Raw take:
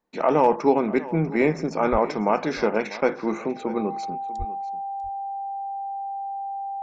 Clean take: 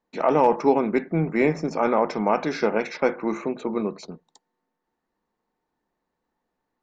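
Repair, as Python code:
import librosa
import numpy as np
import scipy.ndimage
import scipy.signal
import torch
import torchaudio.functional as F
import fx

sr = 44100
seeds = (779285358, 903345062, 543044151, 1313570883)

y = fx.notch(x, sr, hz=790.0, q=30.0)
y = fx.fix_deplosive(y, sr, at_s=(1.91, 4.38))
y = fx.fix_echo_inverse(y, sr, delay_ms=644, level_db=-17.5)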